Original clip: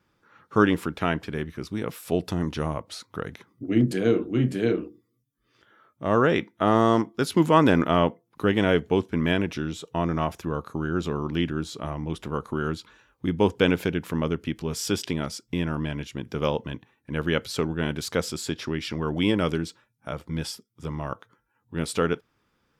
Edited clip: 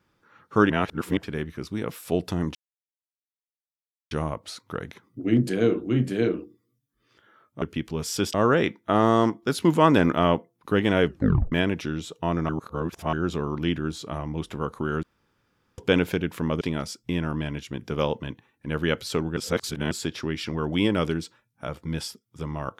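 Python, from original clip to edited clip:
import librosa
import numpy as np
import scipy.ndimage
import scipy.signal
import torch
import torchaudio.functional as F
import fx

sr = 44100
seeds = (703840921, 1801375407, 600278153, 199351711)

y = fx.edit(x, sr, fx.reverse_span(start_s=0.7, length_s=0.47),
    fx.insert_silence(at_s=2.55, length_s=1.56),
    fx.tape_stop(start_s=8.78, length_s=0.46),
    fx.reverse_span(start_s=10.21, length_s=0.64),
    fx.room_tone_fill(start_s=12.75, length_s=0.75),
    fx.move(start_s=14.33, length_s=0.72, to_s=6.06),
    fx.reverse_span(start_s=17.81, length_s=0.54), tone=tone)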